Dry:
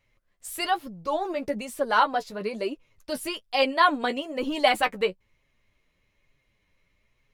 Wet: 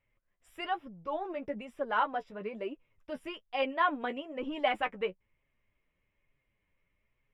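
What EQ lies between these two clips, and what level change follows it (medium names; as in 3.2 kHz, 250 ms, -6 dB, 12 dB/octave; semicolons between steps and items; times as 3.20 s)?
Savitzky-Golay filter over 25 samples; -8.0 dB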